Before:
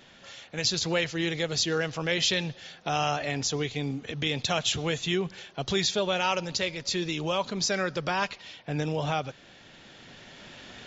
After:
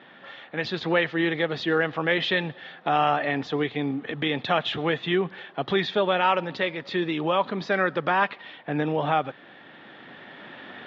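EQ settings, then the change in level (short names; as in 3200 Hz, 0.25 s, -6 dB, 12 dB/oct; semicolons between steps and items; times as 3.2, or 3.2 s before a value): air absorption 500 m; speaker cabinet 200–6400 Hz, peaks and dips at 300 Hz +3 dB, 820 Hz +4 dB, 1200 Hz +5 dB, 1800 Hz +7 dB, 3500 Hz +6 dB; +5.5 dB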